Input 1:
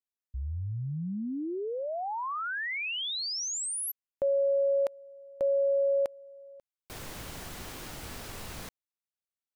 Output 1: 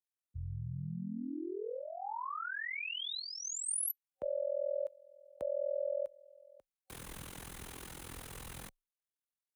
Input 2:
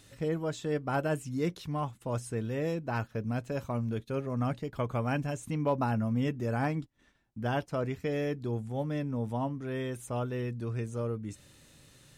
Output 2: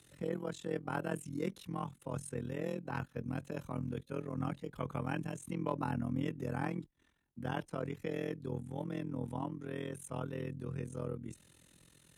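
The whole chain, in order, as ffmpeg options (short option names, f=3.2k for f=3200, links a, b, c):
-af "tremolo=f=42:d=0.889,superequalizer=8b=0.631:14b=0.631:16b=1.78,afreqshift=19,volume=-2.5dB"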